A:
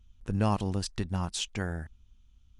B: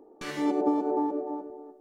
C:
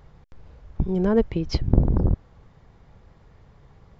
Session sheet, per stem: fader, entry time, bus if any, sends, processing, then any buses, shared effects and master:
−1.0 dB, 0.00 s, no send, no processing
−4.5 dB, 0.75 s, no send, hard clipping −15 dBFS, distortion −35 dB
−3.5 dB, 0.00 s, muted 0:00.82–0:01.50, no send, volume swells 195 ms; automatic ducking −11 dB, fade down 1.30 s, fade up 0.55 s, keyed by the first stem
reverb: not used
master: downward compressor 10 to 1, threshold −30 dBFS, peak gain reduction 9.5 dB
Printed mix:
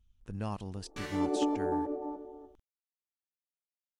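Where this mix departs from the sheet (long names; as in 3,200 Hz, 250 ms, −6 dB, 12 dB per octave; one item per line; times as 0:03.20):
stem A −1.0 dB → −10.0 dB
stem C: muted
master: missing downward compressor 10 to 1, threshold −30 dBFS, peak gain reduction 9.5 dB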